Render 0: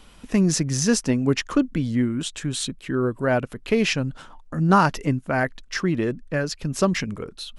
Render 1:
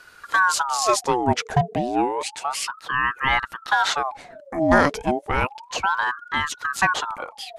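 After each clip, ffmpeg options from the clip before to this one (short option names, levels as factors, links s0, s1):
-af "aeval=exprs='val(0)*sin(2*PI*950*n/s+950*0.55/0.31*sin(2*PI*0.31*n/s))':c=same,volume=1.41"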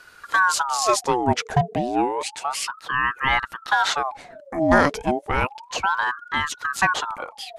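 -af anull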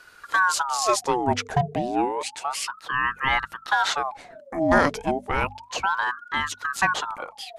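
-af "bandreject=f=50:t=h:w=6,bandreject=f=100:t=h:w=6,bandreject=f=150:t=h:w=6,bandreject=f=200:t=h:w=6,bandreject=f=250:t=h:w=6,volume=0.794"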